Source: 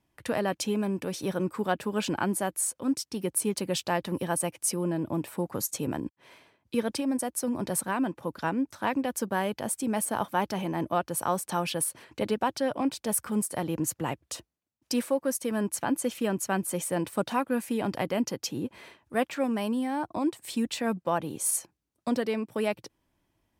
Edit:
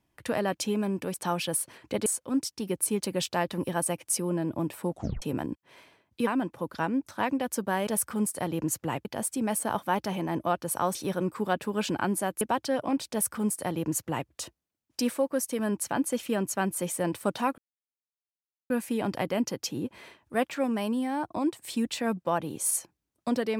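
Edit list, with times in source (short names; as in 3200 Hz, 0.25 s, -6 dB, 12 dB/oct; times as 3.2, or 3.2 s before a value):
1.14–2.6 swap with 11.41–12.33
5.44 tape stop 0.32 s
6.81–7.91 cut
13.03–14.21 copy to 9.51
17.5 insert silence 1.12 s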